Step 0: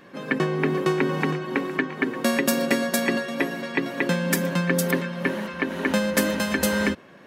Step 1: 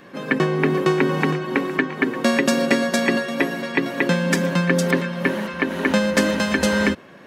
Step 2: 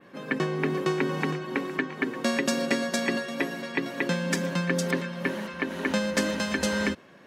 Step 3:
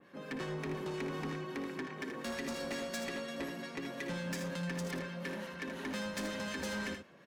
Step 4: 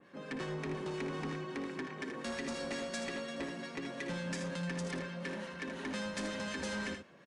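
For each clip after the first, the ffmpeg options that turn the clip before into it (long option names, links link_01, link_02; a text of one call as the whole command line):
ffmpeg -i in.wav -filter_complex "[0:a]acrossover=split=8100[link_01][link_02];[link_02]acompressor=threshold=-50dB:ratio=4:attack=1:release=60[link_03];[link_01][link_03]amix=inputs=2:normalize=0,volume=4dB" out.wav
ffmpeg -i in.wav -af "adynamicequalizer=threshold=0.0141:dfrequency=6100:dqfactor=0.75:tfrequency=6100:tqfactor=0.75:attack=5:release=100:ratio=0.375:range=2:mode=boostabove:tftype=bell,volume=-8dB" out.wav
ffmpeg -i in.wav -filter_complex "[0:a]acrossover=split=1200[link_01][link_02];[link_01]aeval=exprs='val(0)*(1-0.5/2+0.5/2*cos(2*PI*5.6*n/s))':channel_layout=same[link_03];[link_02]aeval=exprs='val(0)*(1-0.5/2-0.5/2*cos(2*PI*5.6*n/s))':channel_layout=same[link_04];[link_03][link_04]amix=inputs=2:normalize=0,asoftclip=type=tanh:threshold=-29.5dB,asplit=2[link_05][link_06];[link_06]aecho=0:1:58|79:0.251|0.422[link_07];[link_05][link_07]amix=inputs=2:normalize=0,volume=-5.5dB" out.wav
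ffmpeg -i in.wav -af "aresample=22050,aresample=44100" out.wav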